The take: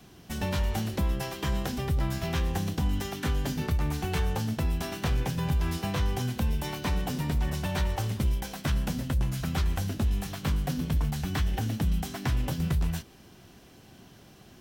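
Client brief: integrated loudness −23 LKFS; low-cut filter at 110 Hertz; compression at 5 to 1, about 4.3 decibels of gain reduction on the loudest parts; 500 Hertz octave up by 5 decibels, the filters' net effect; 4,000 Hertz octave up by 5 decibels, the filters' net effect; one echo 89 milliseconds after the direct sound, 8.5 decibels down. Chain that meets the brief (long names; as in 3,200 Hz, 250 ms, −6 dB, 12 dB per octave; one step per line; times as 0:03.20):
high-pass filter 110 Hz
parametric band 500 Hz +6.5 dB
parametric band 4,000 Hz +6.5 dB
downward compressor 5 to 1, threshold −29 dBFS
single-tap delay 89 ms −8.5 dB
level +10.5 dB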